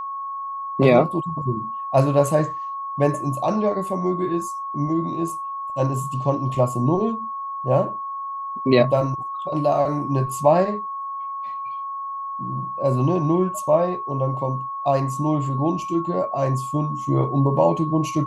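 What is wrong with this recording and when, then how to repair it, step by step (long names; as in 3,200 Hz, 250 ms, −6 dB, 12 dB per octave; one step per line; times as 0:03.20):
whistle 1,100 Hz −27 dBFS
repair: notch filter 1,100 Hz, Q 30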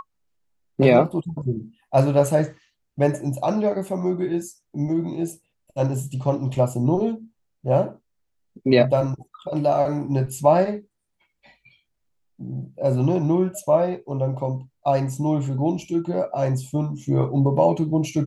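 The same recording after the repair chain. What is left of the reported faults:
none of them is left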